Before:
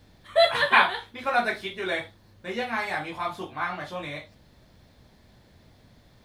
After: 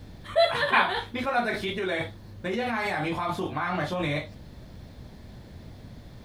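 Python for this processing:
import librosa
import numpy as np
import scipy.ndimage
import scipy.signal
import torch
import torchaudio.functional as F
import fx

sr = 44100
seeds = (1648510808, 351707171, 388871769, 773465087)

p1 = fx.low_shelf(x, sr, hz=480.0, db=7.5)
p2 = fx.over_compress(p1, sr, threshold_db=-32.0, ratio=-0.5)
p3 = p1 + (p2 * 10.0 ** (-0.5 / 20.0))
y = p3 * 10.0 ** (-4.5 / 20.0)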